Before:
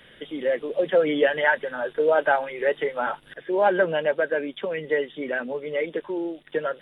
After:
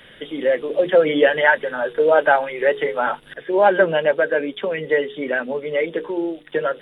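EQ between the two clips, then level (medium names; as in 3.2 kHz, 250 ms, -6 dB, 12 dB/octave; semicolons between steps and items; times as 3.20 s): hum notches 60/120/180/240/300/360/420/480 Hz; +5.5 dB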